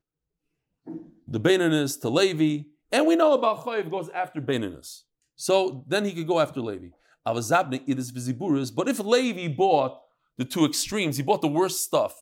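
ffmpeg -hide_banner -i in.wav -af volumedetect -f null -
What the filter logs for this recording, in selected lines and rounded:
mean_volume: -25.2 dB
max_volume: -7.6 dB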